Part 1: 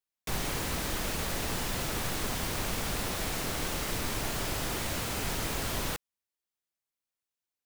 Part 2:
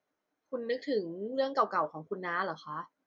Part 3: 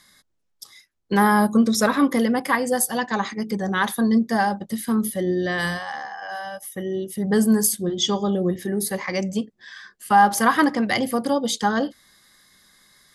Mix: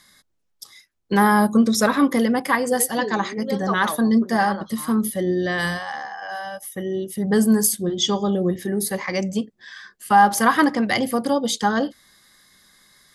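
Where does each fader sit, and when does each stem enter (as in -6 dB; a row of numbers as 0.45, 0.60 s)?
off, +1.5 dB, +1.0 dB; off, 2.10 s, 0.00 s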